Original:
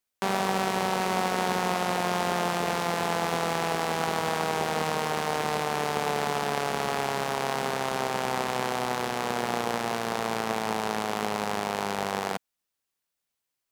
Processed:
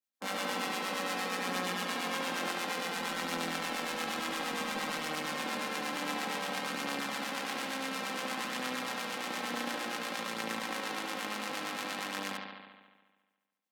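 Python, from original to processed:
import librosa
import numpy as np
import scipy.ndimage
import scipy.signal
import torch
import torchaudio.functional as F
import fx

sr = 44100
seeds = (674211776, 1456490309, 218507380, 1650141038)

y = fx.spec_clip(x, sr, under_db=14)
y = scipy.signal.sosfilt(scipy.signal.cheby1(3, 1.0, 160.0, 'highpass', fs=sr, output='sos'), y)
y = fx.peak_eq(y, sr, hz=260.0, db=3.5, octaves=0.37)
y = y + 0.66 * np.pad(y, (int(3.8 * sr / 1000.0), 0))[:len(y)]
y = fx.dmg_noise_colour(y, sr, seeds[0], colour='pink', level_db=-55.0, at=(2.95, 5.27), fade=0.02)
y = fx.harmonic_tremolo(y, sr, hz=8.6, depth_pct=70, crossover_hz=860.0)
y = fx.echo_bbd(y, sr, ms=71, stages=2048, feedback_pct=71, wet_db=-4.0)
y = y * 10.0 ** (-8.0 / 20.0)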